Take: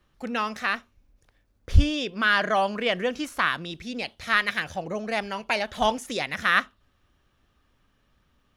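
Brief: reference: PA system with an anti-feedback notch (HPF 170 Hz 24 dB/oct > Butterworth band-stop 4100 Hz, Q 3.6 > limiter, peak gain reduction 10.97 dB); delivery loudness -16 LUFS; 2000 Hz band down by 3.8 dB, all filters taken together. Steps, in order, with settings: HPF 170 Hz 24 dB/oct; Butterworth band-stop 4100 Hz, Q 3.6; bell 2000 Hz -5 dB; gain +17 dB; limiter -4 dBFS

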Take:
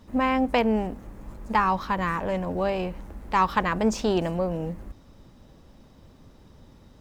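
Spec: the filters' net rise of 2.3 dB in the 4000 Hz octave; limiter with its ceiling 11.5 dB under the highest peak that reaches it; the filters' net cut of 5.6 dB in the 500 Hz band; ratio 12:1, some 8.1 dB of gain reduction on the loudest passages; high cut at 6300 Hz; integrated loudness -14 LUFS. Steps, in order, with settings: LPF 6300 Hz; bell 500 Hz -7 dB; bell 4000 Hz +4 dB; compressor 12:1, threshold -26 dBFS; gain +23.5 dB; limiter -4 dBFS

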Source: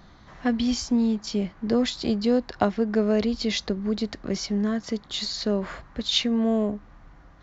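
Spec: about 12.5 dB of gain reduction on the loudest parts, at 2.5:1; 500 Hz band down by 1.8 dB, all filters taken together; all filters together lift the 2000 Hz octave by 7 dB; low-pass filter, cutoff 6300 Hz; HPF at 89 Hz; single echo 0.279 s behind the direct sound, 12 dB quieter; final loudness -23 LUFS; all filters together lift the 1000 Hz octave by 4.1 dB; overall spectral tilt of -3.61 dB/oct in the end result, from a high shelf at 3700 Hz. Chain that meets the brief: HPF 89 Hz; LPF 6300 Hz; bell 500 Hz -4 dB; bell 1000 Hz +6 dB; bell 2000 Hz +5 dB; high shelf 3700 Hz +8 dB; compressor 2.5:1, threshold -34 dBFS; echo 0.279 s -12 dB; gain +10 dB

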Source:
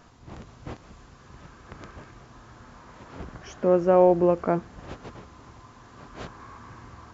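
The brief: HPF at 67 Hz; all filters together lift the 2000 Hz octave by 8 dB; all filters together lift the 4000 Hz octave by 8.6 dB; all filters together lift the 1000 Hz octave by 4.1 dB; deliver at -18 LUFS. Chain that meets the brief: HPF 67 Hz; bell 1000 Hz +4 dB; bell 2000 Hz +7.5 dB; bell 4000 Hz +8.5 dB; gain +2.5 dB

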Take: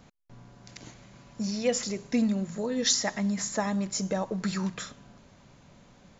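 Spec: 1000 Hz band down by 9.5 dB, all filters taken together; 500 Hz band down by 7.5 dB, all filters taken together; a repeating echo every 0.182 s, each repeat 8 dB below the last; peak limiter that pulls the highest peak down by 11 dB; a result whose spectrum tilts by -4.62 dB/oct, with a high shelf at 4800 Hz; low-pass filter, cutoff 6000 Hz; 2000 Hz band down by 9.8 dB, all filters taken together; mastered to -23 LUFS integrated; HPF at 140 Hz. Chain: HPF 140 Hz; LPF 6000 Hz; bell 500 Hz -6 dB; bell 1000 Hz -8.5 dB; bell 2000 Hz -8 dB; high shelf 4800 Hz -5 dB; limiter -30 dBFS; feedback echo 0.182 s, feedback 40%, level -8 dB; gain +14 dB

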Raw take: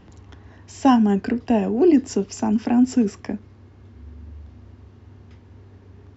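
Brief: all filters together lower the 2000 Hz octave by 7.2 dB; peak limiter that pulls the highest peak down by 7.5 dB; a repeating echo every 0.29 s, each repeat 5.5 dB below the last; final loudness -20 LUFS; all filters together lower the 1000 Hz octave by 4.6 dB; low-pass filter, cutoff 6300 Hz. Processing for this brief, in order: LPF 6300 Hz; bell 1000 Hz -5 dB; bell 2000 Hz -8 dB; limiter -15 dBFS; feedback echo 0.29 s, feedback 53%, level -5.5 dB; gain +3.5 dB

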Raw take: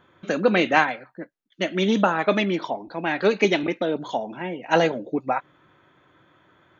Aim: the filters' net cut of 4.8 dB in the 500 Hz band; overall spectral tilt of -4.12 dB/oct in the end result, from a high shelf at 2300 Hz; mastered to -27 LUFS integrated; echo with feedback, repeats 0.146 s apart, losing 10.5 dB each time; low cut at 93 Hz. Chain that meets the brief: HPF 93 Hz; bell 500 Hz -6.5 dB; high shelf 2300 Hz +6.5 dB; feedback echo 0.146 s, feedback 30%, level -10.5 dB; gain -3.5 dB

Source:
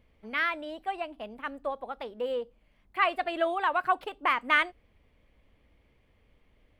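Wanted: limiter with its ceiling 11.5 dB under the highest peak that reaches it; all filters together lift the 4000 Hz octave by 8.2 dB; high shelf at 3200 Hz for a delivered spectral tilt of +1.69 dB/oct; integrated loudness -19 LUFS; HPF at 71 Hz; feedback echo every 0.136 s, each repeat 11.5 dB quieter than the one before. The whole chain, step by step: HPF 71 Hz; high shelf 3200 Hz +5.5 dB; bell 4000 Hz +8 dB; limiter -17.5 dBFS; feedback echo 0.136 s, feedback 27%, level -11.5 dB; gain +12 dB

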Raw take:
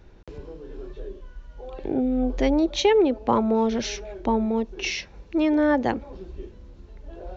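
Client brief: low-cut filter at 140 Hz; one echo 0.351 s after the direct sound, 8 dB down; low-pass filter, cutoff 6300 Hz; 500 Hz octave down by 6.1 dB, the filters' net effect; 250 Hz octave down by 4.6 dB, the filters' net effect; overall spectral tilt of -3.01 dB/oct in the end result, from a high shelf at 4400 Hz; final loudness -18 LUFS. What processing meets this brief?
HPF 140 Hz; LPF 6300 Hz; bell 250 Hz -3 dB; bell 500 Hz -6.5 dB; high shelf 4400 Hz -6 dB; echo 0.351 s -8 dB; gain +9.5 dB

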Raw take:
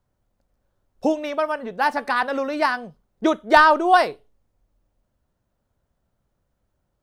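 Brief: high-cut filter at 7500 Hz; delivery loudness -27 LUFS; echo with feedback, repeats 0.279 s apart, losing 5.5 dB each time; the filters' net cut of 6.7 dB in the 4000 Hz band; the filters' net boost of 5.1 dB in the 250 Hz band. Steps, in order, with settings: LPF 7500 Hz; bell 250 Hz +7 dB; bell 4000 Hz -8.5 dB; feedback echo 0.279 s, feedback 53%, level -5.5 dB; gain -8 dB

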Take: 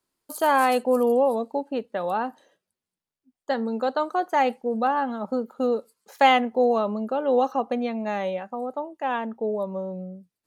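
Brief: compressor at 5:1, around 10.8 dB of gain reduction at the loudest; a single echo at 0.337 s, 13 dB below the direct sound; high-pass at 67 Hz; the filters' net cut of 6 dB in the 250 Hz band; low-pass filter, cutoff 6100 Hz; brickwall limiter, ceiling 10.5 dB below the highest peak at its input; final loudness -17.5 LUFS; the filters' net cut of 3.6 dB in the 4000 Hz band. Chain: HPF 67 Hz; LPF 6100 Hz; bell 250 Hz -6.5 dB; bell 4000 Hz -5 dB; compressor 5:1, threshold -25 dBFS; limiter -23.5 dBFS; echo 0.337 s -13 dB; gain +15.5 dB

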